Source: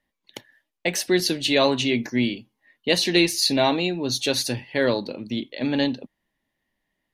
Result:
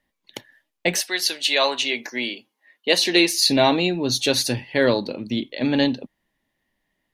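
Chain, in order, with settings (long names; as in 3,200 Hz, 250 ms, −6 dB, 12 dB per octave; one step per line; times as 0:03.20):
0:01.00–0:03.42: high-pass filter 970 Hz → 270 Hz 12 dB per octave
level +3 dB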